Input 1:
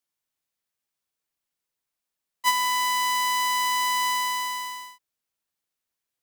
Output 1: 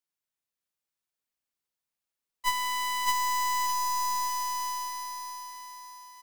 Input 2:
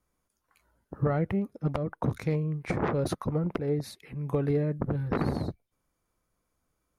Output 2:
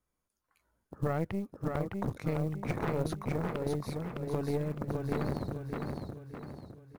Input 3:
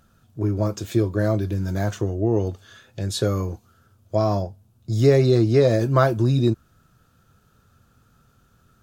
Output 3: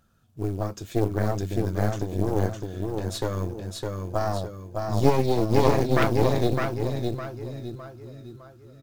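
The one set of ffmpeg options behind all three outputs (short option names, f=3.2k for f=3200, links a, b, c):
-af "aecho=1:1:609|1218|1827|2436|3045|3654:0.708|0.311|0.137|0.0603|0.0265|0.0117,acrusher=bits=8:mode=log:mix=0:aa=0.000001,aeval=exprs='0.891*(cos(1*acos(clip(val(0)/0.891,-1,1)))-cos(1*PI/2))+0.398*(cos(4*acos(clip(val(0)/0.891,-1,1)))-cos(4*PI/2))':c=same,volume=-6.5dB"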